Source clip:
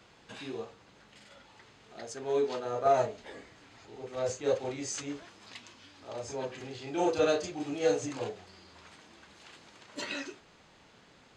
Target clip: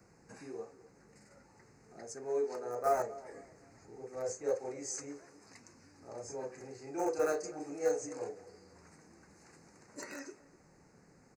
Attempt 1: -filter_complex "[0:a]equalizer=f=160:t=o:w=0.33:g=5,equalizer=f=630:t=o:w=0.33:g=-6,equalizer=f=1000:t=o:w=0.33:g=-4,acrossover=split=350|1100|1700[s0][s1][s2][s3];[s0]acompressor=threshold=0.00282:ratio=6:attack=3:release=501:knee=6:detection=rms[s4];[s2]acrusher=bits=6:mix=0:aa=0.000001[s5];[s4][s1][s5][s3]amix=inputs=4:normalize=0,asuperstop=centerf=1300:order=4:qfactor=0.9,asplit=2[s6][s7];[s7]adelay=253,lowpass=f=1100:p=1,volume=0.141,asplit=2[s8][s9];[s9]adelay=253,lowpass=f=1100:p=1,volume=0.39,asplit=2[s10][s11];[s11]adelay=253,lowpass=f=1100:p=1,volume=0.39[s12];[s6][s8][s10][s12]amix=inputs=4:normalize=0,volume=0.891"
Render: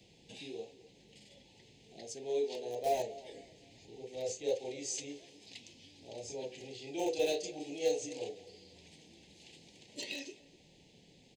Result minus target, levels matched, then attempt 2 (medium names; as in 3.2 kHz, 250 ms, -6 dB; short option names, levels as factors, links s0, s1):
4 kHz band +13.0 dB
-filter_complex "[0:a]equalizer=f=160:t=o:w=0.33:g=5,equalizer=f=630:t=o:w=0.33:g=-6,equalizer=f=1000:t=o:w=0.33:g=-4,acrossover=split=350|1100|1700[s0][s1][s2][s3];[s0]acompressor=threshold=0.00282:ratio=6:attack=3:release=501:knee=6:detection=rms[s4];[s2]acrusher=bits=6:mix=0:aa=0.000001[s5];[s4][s1][s5][s3]amix=inputs=4:normalize=0,asuperstop=centerf=3300:order=4:qfactor=0.9,asplit=2[s6][s7];[s7]adelay=253,lowpass=f=1100:p=1,volume=0.141,asplit=2[s8][s9];[s9]adelay=253,lowpass=f=1100:p=1,volume=0.39,asplit=2[s10][s11];[s11]adelay=253,lowpass=f=1100:p=1,volume=0.39[s12];[s6][s8][s10][s12]amix=inputs=4:normalize=0,volume=0.891"